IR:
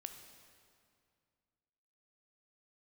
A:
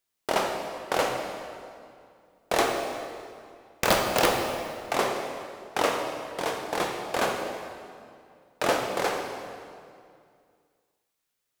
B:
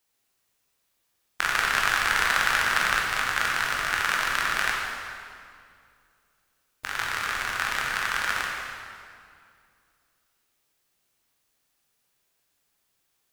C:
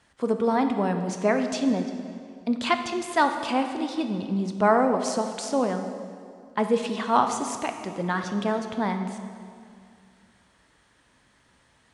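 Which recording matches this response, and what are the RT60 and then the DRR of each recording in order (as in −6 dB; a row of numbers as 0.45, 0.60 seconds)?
C; 2.3, 2.3, 2.3 seconds; 2.0, −2.5, 6.0 decibels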